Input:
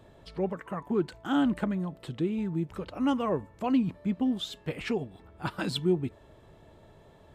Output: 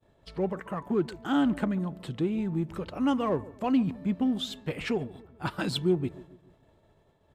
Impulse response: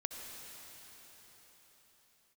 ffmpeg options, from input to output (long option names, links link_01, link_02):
-filter_complex "[0:a]agate=range=-33dB:threshold=-46dB:ratio=3:detection=peak,asplit=2[link_01][link_02];[link_02]volume=33dB,asoftclip=hard,volume=-33dB,volume=-12dB[link_03];[link_01][link_03]amix=inputs=2:normalize=0,asplit=2[link_04][link_05];[link_05]adelay=141,lowpass=frequency=820:poles=1,volume=-18dB,asplit=2[link_06][link_07];[link_07]adelay=141,lowpass=frequency=820:poles=1,volume=0.49,asplit=2[link_08][link_09];[link_09]adelay=141,lowpass=frequency=820:poles=1,volume=0.49,asplit=2[link_10][link_11];[link_11]adelay=141,lowpass=frequency=820:poles=1,volume=0.49[link_12];[link_04][link_06][link_08][link_10][link_12]amix=inputs=5:normalize=0"